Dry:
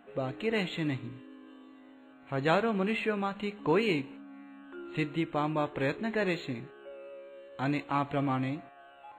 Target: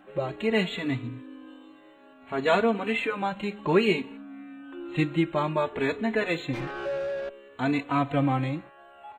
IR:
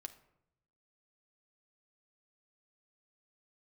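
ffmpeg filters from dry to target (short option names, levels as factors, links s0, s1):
-filter_complex "[0:a]asettb=1/sr,asplit=3[s0][s1][s2];[s0]atrim=end=6.534[s3];[s1]atrim=start=6.53:end=7.29,asetpts=PTS-STARTPTS,afade=t=in:d=0.004:c=qsin,afade=t=out:st=0.756:d=0.004:c=qsin,asplit=2[s4][s5];[s5]highpass=f=720:p=1,volume=35.5,asoftclip=type=tanh:threshold=0.0355[s6];[s4][s6]amix=inputs=2:normalize=0,lowpass=f=1500:p=1,volume=0.501[s7];[s2]atrim=start=7.286[s8];[s3][s7]acrossfade=d=0.004:c1=hsin:c2=qsin[s9];[s9][s8]acrossfade=d=0.004:c1=qsin:c2=hsin,asplit=2[s10][s11];[s11]adelay=3.3,afreqshift=0.59[s12];[s10][s12]amix=inputs=2:normalize=1,volume=2.37"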